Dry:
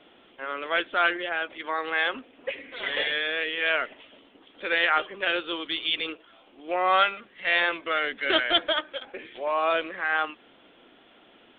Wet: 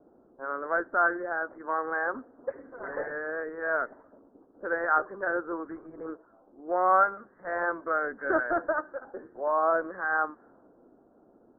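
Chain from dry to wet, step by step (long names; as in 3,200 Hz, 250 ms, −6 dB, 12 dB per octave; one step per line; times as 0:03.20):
Butterworth low-pass 1,600 Hz 72 dB per octave
low-pass that shuts in the quiet parts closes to 540 Hz, open at −26 dBFS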